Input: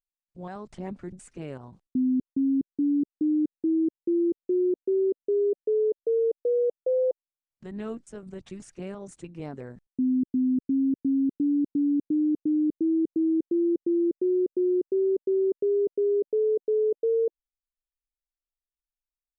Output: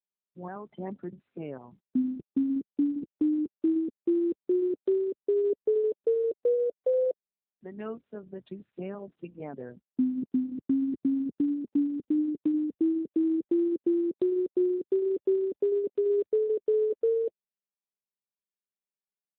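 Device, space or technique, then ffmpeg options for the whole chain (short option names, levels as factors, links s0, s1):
mobile call with aggressive noise cancelling: -filter_complex "[0:a]asplit=3[s0][s1][s2];[s0]afade=t=out:st=6.54:d=0.02[s3];[s1]bass=f=250:g=-6,treble=f=4000:g=4,afade=t=in:st=6.54:d=0.02,afade=t=out:st=8.03:d=0.02[s4];[s2]afade=t=in:st=8.03:d=0.02[s5];[s3][s4][s5]amix=inputs=3:normalize=0,highpass=170,afftdn=nr=17:nf=-48,volume=1.19" -ar 8000 -c:a libopencore_amrnb -b:a 12200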